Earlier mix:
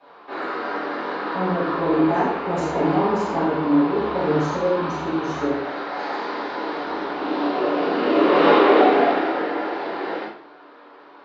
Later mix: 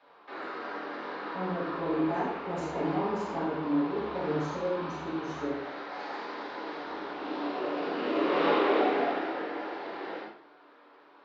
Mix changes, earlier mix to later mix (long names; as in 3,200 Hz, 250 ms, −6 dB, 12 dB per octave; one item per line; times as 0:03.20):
speech −10.0 dB
background: send −11.0 dB